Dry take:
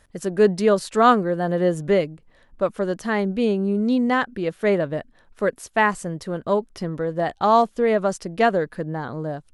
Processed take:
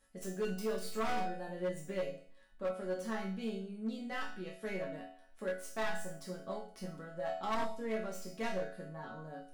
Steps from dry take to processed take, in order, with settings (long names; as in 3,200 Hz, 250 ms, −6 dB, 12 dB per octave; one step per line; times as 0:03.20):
stylus tracing distortion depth 0.063 ms
flutter between parallel walls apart 4.4 metres, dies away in 0.26 s
in parallel at −0.5 dB: downward compressor, threshold −30 dBFS, peak gain reduction 20 dB
on the sum: high-shelf EQ 7,400 Hz +8.5 dB
resonators tuned to a chord F#3 minor, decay 0.5 s
flanger 1.1 Hz, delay 7.6 ms, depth 1.1 ms, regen −85%
hard clipping −35 dBFS, distortion −10 dB
level +5 dB